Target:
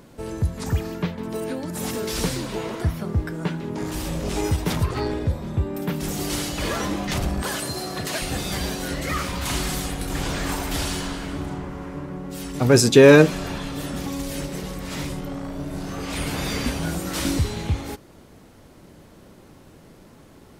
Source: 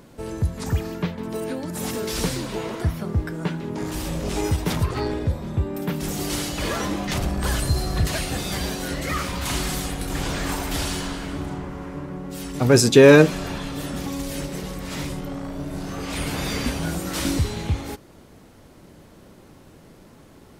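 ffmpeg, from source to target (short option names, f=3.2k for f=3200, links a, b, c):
-filter_complex "[0:a]asettb=1/sr,asplit=3[a][b][c];[a]atrim=end=7.424[d];[b]atrim=start=7.42:end=8.22,asetpts=PTS-STARTPTS,afade=t=in:d=0.004:c=qsin,afade=t=out:st=0.796:d=0.004:c=qsin,highpass=220[e];[c]atrim=start=8.216[f];[d][e]acrossfade=d=0.004:c1=hsin:c2=qsin[g];[g][f]acrossfade=d=0.004:c1=qsin:c2=hsin"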